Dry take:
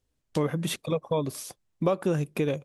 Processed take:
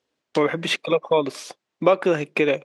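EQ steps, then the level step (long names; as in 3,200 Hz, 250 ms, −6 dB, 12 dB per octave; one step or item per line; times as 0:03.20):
dynamic equaliser 2,200 Hz, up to +7 dB, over −51 dBFS, Q 1.8
band-pass filter 330–4,800 Hz
+9.0 dB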